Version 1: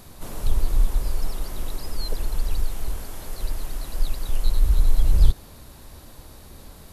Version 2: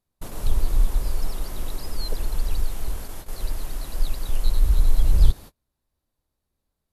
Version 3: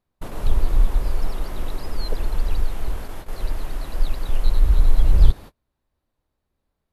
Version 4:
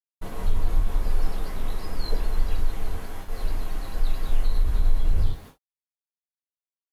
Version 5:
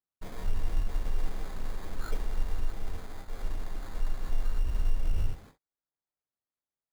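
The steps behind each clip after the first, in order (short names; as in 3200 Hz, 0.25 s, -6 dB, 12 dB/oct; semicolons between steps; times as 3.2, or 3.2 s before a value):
gate -32 dBFS, range -36 dB
tone controls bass -2 dB, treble -11 dB; gain +4.5 dB
limiter -11 dBFS, peak gain reduction 9.5 dB; sample gate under -49 dBFS; non-linear reverb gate 0.1 s falling, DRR -3 dB; gain -6.5 dB
sample-rate reducer 2800 Hz, jitter 0%; gain -7 dB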